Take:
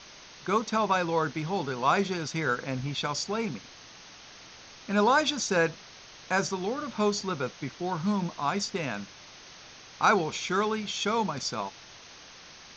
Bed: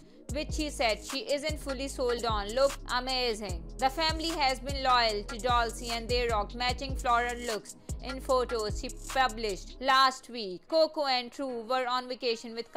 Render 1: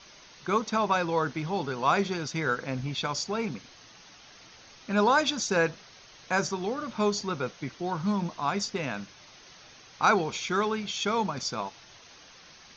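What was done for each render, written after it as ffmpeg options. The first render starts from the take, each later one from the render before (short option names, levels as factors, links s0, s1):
-af "afftdn=nr=6:nf=-50"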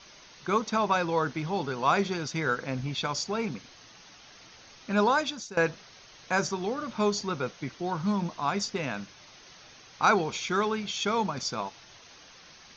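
-filter_complex "[0:a]asplit=2[s0][s1];[s0]atrim=end=5.57,asetpts=PTS-STARTPTS,afade=t=out:st=5:d=0.57:silence=0.125893[s2];[s1]atrim=start=5.57,asetpts=PTS-STARTPTS,afade=t=in:d=0.004:c=hsin:silence=0.125893[s3];[s2][s3]concat=n=2:v=0:a=1"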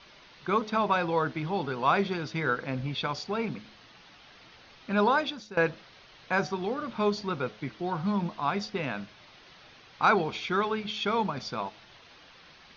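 -af "lowpass=f=4300:w=0.5412,lowpass=f=4300:w=1.3066,bandreject=f=106.5:t=h:w=4,bandreject=f=213:t=h:w=4,bandreject=f=319.5:t=h:w=4,bandreject=f=426:t=h:w=4,bandreject=f=532.5:t=h:w=4,bandreject=f=639:t=h:w=4,bandreject=f=745.5:t=h:w=4"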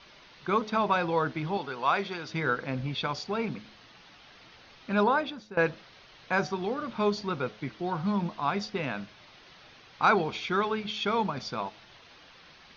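-filter_complex "[0:a]asettb=1/sr,asplit=3[s0][s1][s2];[s0]atrim=end=1.574[s3];[s1]atrim=start=1.57:end=2.29,asetpts=PTS-STARTPTS,afade=t=in:d=0.004:c=qsin,afade=t=out:st=0.716:d=0.004:c=qsin,lowshelf=f=360:g=-11[s4];[s2]atrim=start=2.286[s5];[s3][s4]acrossfade=d=0.004:c1=hsin:c2=qsin[s6];[s6][s5]acrossfade=d=0.004:c1=qsin:c2=hsin,asettb=1/sr,asplit=3[s7][s8][s9];[s7]atrim=end=5.034[s10];[s8]atrim=start=5.03:end=5.59,asetpts=PTS-STARTPTS,afade=t=in:d=0.004:c=qsin,afade=t=out:st=0.556:d=0.004:c=qsin,lowpass=f=2300:p=1[s11];[s9]atrim=start=5.586[s12];[s10][s11]acrossfade=d=0.004:c1=hsin:c2=qsin[s13];[s13][s12]acrossfade=d=0.004:c1=qsin:c2=hsin"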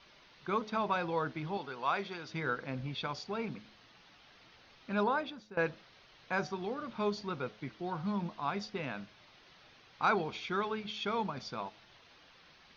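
-af "volume=0.473"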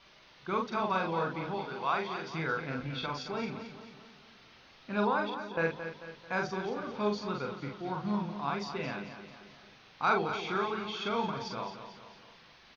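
-filter_complex "[0:a]asplit=2[s0][s1];[s1]adelay=43,volume=0.708[s2];[s0][s2]amix=inputs=2:normalize=0,aecho=1:1:221|442|663|884|1105:0.316|0.155|0.0759|0.0372|0.0182"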